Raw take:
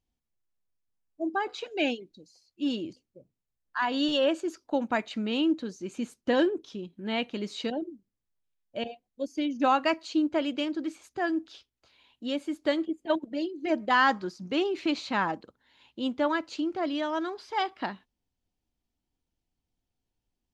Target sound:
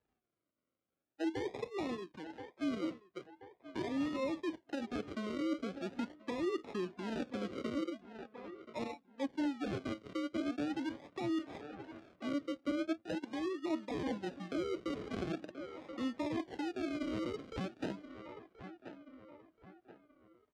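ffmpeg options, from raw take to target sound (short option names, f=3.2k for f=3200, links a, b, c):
-filter_complex "[0:a]acrusher=samples=40:mix=1:aa=0.000001:lfo=1:lforange=24:lforate=0.42,lowpass=3.8k,lowshelf=f=160:g=-11,asplit=2[a][b];[b]adelay=1029,lowpass=f=2.5k:p=1,volume=-23.5dB,asplit=2[c][d];[d]adelay=1029,lowpass=f=2.5k:p=1,volume=0.43,asplit=2[e][f];[f]adelay=1029,lowpass=f=2.5k:p=1,volume=0.43[g];[a][c][e][g]amix=inputs=4:normalize=0,areverse,acompressor=threshold=-36dB:ratio=6,areverse,highpass=67,acrossover=split=450|2700[h][i][j];[h]acompressor=threshold=-43dB:ratio=4[k];[i]acompressor=threshold=-54dB:ratio=4[l];[j]acompressor=threshold=-60dB:ratio=4[m];[k][l][m]amix=inputs=3:normalize=0,flanger=delay=2.3:depth=1.6:regen=64:speed=0.6:shape=triangular,volume=11dB"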